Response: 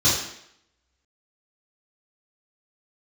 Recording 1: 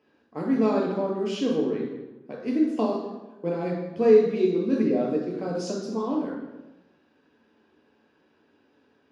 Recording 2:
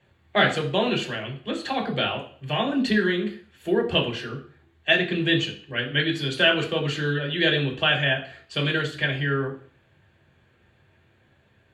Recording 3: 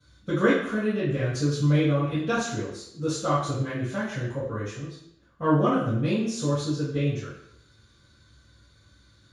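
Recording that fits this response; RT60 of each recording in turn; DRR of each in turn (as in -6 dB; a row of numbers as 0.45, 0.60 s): 3; not exponential, 0.45 s, 0.75 s; -1.5, -3.0, -12.0 dB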